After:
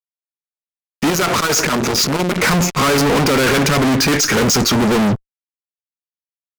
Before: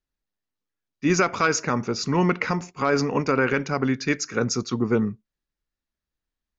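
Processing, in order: fuzz box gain 45 dB, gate -53 dBFS; 1.10–2.43 s: transformer saturation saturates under 290 Hz

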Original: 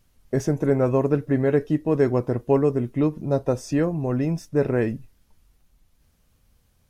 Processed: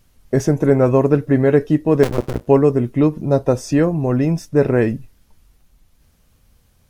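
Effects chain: 2.03–2.47 s: cycle switcher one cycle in 2, muted; trim +6.5 dB

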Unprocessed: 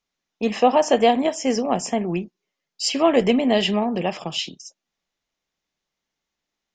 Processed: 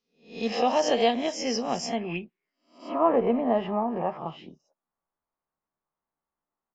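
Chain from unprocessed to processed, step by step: reverse spectral sustain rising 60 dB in 0.41 s; low-pass sweep 5 kHz -> 1.1 kHz, 1.85–2.80 s; doubling 13 ms -12 dB; trim -8.5 dB

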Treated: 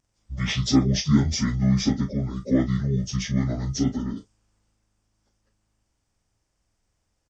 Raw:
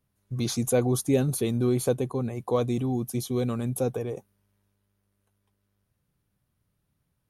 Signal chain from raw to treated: frequency-domain pitch shifter -11 st; peaking EQ 72 Hz -6.5 dB 1.5 oct; doubling 37 ms -10 dB; trim +6 dB

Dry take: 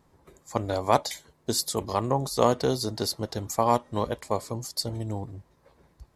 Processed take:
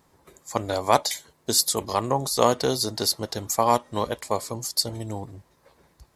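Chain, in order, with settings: tilt EQ +1.5 dB/octave; trim +3 dB

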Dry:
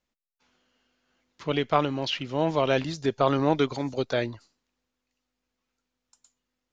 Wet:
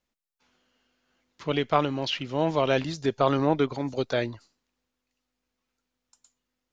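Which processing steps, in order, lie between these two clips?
3.45–3.87 s: treble shelf 3.1 kHz -> 4.6 kHz -11 dB

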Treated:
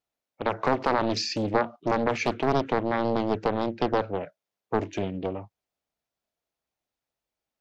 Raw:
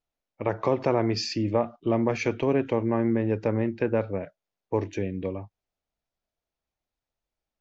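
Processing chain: high-pass 150 Hz 6 dB/octave; loudspeaker Doppler distortion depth 0.95 ms; trim +1.5 dB

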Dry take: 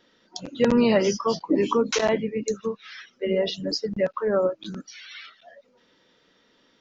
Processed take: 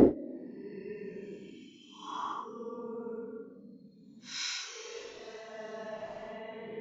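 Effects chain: inverted gate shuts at -16 dBFS, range -39 dB; Paulstretch 11×, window 0.05 s, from 1.52 s; trim +17 dB

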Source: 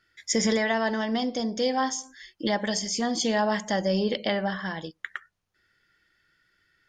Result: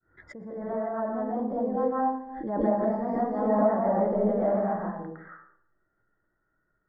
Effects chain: fade-in on the opening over 1.34 s; inverse Chebyshev low-pass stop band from 2.5 kHz, stop band 40 dB; 2.44–4.71 s: ever faster or slower copies 207 ms, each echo +1 st, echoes 2, each echo -6 dB; reverberation RT60 0.70 s, pre-delay 120 ms, DRR -7.5 dB; swell ahead of each attack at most 49 dB/s; trim -8 dB

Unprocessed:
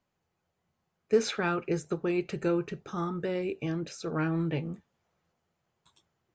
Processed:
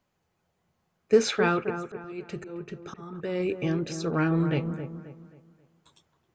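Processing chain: 1.54–3.40 s: slow attack 586 ms; feedback echo behind a low-pass 267 ms, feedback 36%, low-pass 1.6 kHz, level -9 dB; trim +4.5 dB

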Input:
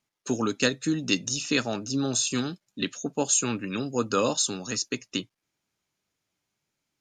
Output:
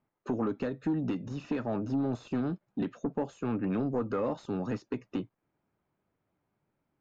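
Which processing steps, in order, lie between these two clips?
compression 6:1, threshold -29 dBFS, peak gain reduction 11.5 dB; saturation -30 dBFS, distortion -11 dB; low-pass 1.1 kHz 12 dB/octave; trim +6.5 dB

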